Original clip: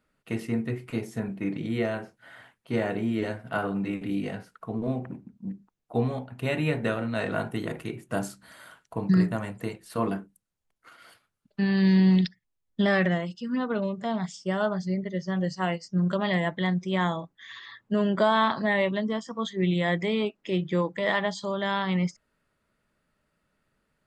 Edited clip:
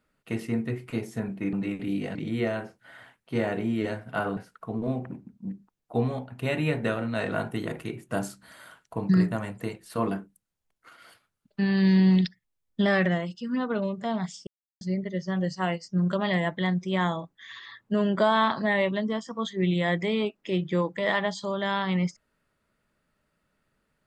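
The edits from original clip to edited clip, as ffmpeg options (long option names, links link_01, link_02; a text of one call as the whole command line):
ffmpeg -i in.wav -filter_complex "[0:a]asplit=6[link_01][link_02][link_03][link_04][link_05][link_06];[link_01]atrim=end=1.532[link_07];[link_02]atrim=start=3.748:end=4.372[link_08];[link_03]atrim=start=1.528:end=3.752[link_09];[link_04]atrim=start=4.368:end=14.47,asetpts=PTS-STARTPTS,afade=type=out:start_time=10.098:duration=0.004:curve=hsin[link_10];[link_05]atrim=start=14.47:end=14.81,asetpts=PTS-STARTPTS,volume=0[link_11];[link_06]atrim=start=14.81,asetpts=PTS-STARTPTS,afade=type=in:duration=0.004:curve=hsin[link_12];[link_07][link_08]acrossfade=duration=0.004:curve1=hsin:curve2=hsin[link_13];[link_13][link_09]acrossfade=duration=0.004:curve1=hsin:curve2=hsin[link_14];[link_10][link_11][link_12]concat=n=3:v=0:a=1[link_15];[link_14][link_15]acrossfade=duration=0.004:curve1=hsin:curve2=hsin" out.wav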